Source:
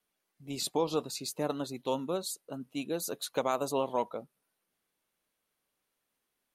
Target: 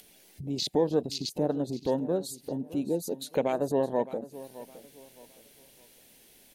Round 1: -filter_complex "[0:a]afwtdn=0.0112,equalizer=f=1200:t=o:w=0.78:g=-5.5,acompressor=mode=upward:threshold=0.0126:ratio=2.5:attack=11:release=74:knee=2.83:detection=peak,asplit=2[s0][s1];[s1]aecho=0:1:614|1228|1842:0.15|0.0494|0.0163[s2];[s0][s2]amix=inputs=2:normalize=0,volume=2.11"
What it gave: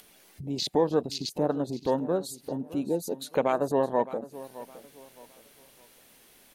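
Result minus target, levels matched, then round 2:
1 kHz band +4.0 dB
-filter_complex "[0:a]afwtdn=0.0112,equalizer=f=1200:t=o:w=0.78:g=-17,acompressor=mode=upward:threshold=0.0126:ratio=2.5:attack=11:release=74:knee=2.83:detection=peak,asplit=2[s0][s1];[s1]aecho=0:1:614|1228|1842:0.15|0.0494|0.0163[s2];[s0][s2]amix=inputs=2:normalize=0,volume=2.11"

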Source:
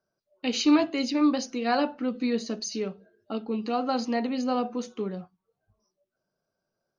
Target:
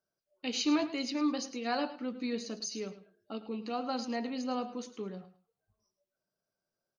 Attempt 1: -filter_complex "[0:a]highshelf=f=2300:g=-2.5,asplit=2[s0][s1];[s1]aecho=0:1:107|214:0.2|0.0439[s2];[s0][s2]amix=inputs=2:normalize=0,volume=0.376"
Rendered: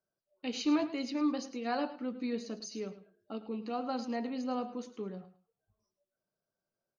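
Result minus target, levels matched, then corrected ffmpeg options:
4 kHz band -4.5 dB
-filter_complex "[0:a]highshelf=f=2300:g=5,asplit=2[s0][s1];[s1]aecho=0:1:107|214:0.2|0.0439[s2];[s0][s2]amix=inputs=2:normalize=0,volume=0.376"

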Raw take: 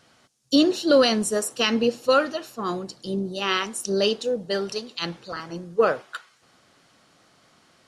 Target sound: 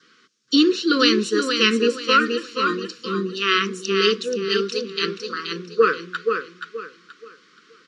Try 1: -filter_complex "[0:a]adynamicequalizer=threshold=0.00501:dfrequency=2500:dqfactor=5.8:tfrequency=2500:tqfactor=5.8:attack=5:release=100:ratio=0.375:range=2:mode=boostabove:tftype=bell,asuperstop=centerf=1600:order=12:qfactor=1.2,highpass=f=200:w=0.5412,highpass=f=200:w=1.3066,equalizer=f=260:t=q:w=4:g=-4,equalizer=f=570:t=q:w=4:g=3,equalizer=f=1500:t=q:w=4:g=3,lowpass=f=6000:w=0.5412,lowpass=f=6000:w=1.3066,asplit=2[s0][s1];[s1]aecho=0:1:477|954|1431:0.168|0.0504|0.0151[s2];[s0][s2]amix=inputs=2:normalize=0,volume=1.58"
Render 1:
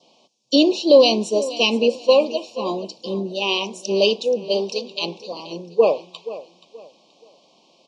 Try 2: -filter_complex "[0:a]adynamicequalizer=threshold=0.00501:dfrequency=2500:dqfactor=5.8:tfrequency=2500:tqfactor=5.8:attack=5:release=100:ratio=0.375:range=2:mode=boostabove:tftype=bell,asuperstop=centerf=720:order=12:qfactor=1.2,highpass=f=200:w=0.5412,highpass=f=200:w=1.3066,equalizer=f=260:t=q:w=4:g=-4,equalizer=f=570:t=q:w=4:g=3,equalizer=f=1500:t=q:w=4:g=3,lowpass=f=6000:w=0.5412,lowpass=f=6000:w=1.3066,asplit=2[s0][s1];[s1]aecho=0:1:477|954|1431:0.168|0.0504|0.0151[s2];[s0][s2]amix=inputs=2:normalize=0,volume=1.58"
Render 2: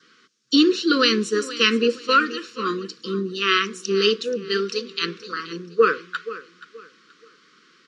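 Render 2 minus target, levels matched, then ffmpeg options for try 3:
echo-to-direct -10 dB
-filter_complex "[0:a]adynamicequalizer=threshold=0.00501:dfrequency=2500:dqfactor=5.8:tfrequency=2500:tqfactor=5.8:attack=5:release=100:ratio=0.375:range=2:mode=boostabove:tftype=bell,asuperstop=centerf=720:order=12:qfactor=1.2,highpass=f=200:w=0.5412,highpass=f=200:w=1.3066,equalizer=f=260:t=q:w=4:g=-4,equalizer=f=570:t=q:w=4:g=3,equalizer=f=1500:t=q:w=4:g=3,lowpass=f=6000:w=0.5412,lowpass=f=6000:w=1.3066,asplit=2[s0][s1];[s1]aecho=0:1:477|954|1431|1908:0.531|0.159|0.0478|0.0143[s2];[s0][s2]amix=inputs=2:normalize=0,volume=1.58"

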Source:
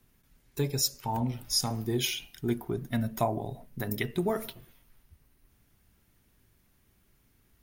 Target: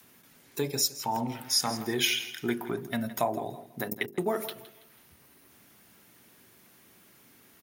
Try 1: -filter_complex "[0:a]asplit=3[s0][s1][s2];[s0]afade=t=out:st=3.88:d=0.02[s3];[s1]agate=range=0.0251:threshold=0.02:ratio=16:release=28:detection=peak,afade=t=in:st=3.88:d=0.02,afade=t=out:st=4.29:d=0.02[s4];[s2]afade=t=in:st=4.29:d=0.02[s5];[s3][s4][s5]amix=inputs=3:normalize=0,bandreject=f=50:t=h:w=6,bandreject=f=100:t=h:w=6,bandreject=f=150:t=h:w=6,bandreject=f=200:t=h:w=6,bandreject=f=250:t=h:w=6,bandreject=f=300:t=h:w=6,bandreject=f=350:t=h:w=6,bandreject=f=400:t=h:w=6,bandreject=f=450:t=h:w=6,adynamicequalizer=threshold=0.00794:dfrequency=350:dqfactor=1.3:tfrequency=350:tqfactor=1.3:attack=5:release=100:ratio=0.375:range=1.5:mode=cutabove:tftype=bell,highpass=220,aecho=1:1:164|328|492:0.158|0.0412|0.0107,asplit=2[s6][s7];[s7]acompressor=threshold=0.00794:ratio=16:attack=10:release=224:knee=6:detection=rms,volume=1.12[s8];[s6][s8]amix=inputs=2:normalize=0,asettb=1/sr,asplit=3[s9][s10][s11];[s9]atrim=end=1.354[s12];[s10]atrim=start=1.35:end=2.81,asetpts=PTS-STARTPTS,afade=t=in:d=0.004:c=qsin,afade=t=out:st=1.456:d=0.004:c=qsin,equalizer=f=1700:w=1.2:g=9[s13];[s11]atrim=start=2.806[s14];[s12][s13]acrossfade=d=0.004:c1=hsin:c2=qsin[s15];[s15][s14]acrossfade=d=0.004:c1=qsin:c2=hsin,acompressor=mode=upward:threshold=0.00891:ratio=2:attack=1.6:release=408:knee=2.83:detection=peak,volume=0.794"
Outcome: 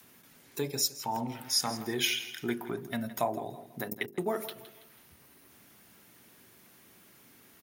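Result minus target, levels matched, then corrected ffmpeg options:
compression: peak gain reduction +11 dB
-filter_complex "[0:a]asplit=3[s0][s1][s2];[s0]afade=t=out:st=3.88:d=0.02[s3];[s1]agate=range=0.0251:threshold=0.02:ratio=16:release=28:detection=peak,afade=t=in:st=3.88:d=0.02,afade=t=out:st=4.29:d=0.02[s4];[s2]afade=t=in:st=4.29:d=0.02[s5];[s3][s4][s5]amix=inputs=3:normalize=0,bandreject=f=50:t=h:w=6,bandreject=f=100:t=h:w=6,bandreject=f=150:t=h:w=6,bandreject=f=200:t=h:w=6,bandreject=f=250:t=h:w=6,bandreject=f=300:t=h:w=6,bandreject=f=350:t=h:w=6,bandreject=f=400:t=h:w=6,bandreject=f=450:t=h:w=6,adynamicequalizer=threshold=0.00794:dfrequency=350:dqfactor=1.3:tfrequency=350:tqfactor=1.3:attack=5:release=100:ratio=0.375:range=1.5:mode=cutabove:tftype=bell,highpass=220,aecho=1:1:164|328|492:0.158|0.0412|0.0107,asplit=2[s6][s7];[s7]acompressor=threshold=0.0299:ratio=16:attack=10:release=224:knee=6:detection=rms,volume=1.12[s8];[s6][s8]amix=inputs=2:normalize=0,asettb=1/sr,asplit=3[s9][s10][s11];[s9]atrim=end=1.354[s12];[s10]atrim=start=1.35:end=2.81,asetpts=PTS-STARTPTS,afade=t=in:d=0.004:c=qsin,afade=t=out:st=1.456:d=0.004:c=qsin,equalizer=f=1700:w=1.2:g=9[s13];[s11]atrim=start=2.806[s14];[s12][s13]acrossfade=d=0.004:c1=hsin:c2=qsin[s15];[s15][s14]acrossfade=d=0.004:c1=qsin:c2=hsin,acompressor=mode=upward:threshold=0.00891:ratio=2:attack=1.6:release=408:knee=2.83:detection=peak,volume=0.794"

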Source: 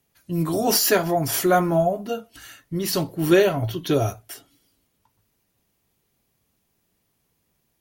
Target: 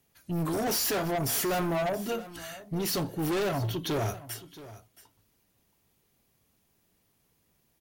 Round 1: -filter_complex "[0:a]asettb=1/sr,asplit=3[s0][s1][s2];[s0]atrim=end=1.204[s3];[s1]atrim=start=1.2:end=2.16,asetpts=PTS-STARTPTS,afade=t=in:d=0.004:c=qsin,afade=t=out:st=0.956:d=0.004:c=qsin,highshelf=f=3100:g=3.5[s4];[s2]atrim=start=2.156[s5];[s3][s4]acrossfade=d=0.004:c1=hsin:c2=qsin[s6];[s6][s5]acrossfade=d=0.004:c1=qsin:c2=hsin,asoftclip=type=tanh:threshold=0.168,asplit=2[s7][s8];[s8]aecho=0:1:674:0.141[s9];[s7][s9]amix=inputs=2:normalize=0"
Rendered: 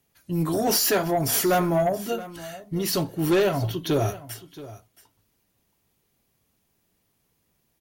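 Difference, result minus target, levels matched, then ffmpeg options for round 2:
saturation: distortion -8 dB
-filter_complex "[0:a]asettb=1/sr,asplit=3[s0][s1][s2];[s0]atrim=end=1.204[s3];[s1]atrim=start=1.2:end=2.16,asetpts=PTS-STARTPTS,afade=t=in:d=0.004:c=qsin,afade=t=out:st=0.956:d=0.004:c=qsin,highshelf=f=3100:g=3.5[s4];[s2]atrim=start=2.156[s5];[s3][s4]acrossfade=d=0.004:c1=hsin:c2=qsin[s6];[s6][s5]acrossfade=d=0.004:c1=qsin:c2=hsin,asoftclip=type=tanh:threshold=0.0473,asplit=2[s7][s8];[s8]aecho=0:1:674:0.141[s9];[s7][s9]amix=inputs=2:normalize=0"

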